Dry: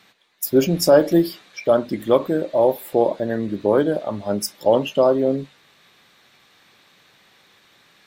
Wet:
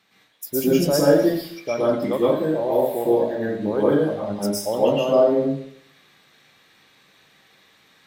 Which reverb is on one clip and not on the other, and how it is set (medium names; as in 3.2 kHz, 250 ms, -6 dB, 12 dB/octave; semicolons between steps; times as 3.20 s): plate-style reverb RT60 0.6 s, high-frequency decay 0.9×, pre-delay 100 ms, DRR -8 dB; trim -9.5 dB